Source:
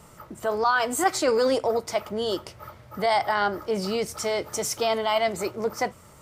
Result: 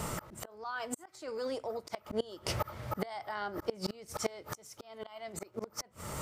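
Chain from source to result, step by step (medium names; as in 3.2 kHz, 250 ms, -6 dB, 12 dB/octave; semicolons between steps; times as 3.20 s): inverted gate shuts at -19 dBFS, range -27 dB; slow attack 416 ms; trim +13 dB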